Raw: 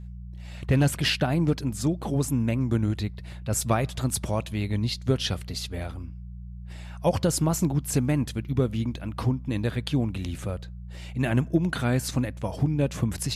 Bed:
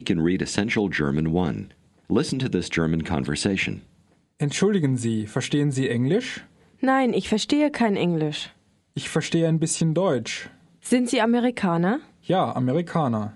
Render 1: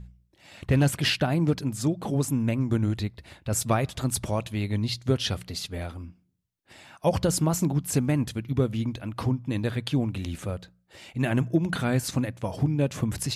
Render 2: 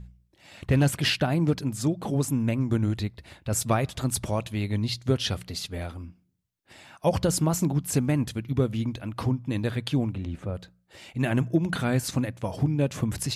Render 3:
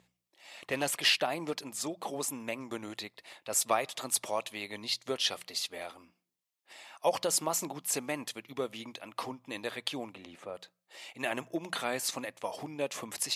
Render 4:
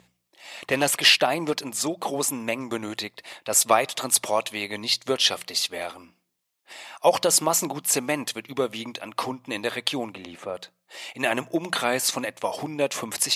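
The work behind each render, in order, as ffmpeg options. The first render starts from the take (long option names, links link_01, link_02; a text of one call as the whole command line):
ffmpeg -i in.wav -af "bandreject=frequency=60:width_type=h:width=4,bandreject=frequency=120:width_type=h:width=4,bandreject=frequency=180:width_type=h:width=4" out.wav
ffmpeg -i in.wav -filter_complex "[0:a]asplit=3[link_01][link_02][link_03];[link_01]afade=type=out:start_time=10.13:duration=0.02[link_04];[link_02]lowpass=frequency=1100:poles=1,afade=type=in:start_time=10.13:duration=0.02,afade=type=out:start_time=10.54:duration=0.02[link_05];[link_03]afade=type=in:start_time=10.54:duration=0.02[link_06];[link_04][link_05][link_06]amix=inputs=3:normalize=0" out.wav
ffmpeg -i in.wav -af "highpass=610,equalizer=frequency=1500:width=7.1:gain=-8.5" out.wav
ffmpeg -i in.wav -af "volume=9.5dB" out.wav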